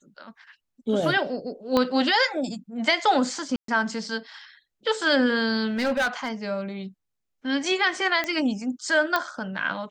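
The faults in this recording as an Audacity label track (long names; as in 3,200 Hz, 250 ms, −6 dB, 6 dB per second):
1.770000	1.770000	click −10 dBFS
3.560000	3.680000	drop-out 123 ms
5.770000	6.290000	clipping −20 dBFS
8.240000	8.240000	click −13 dBFS
9.160000	9.160000	click −10 dBFS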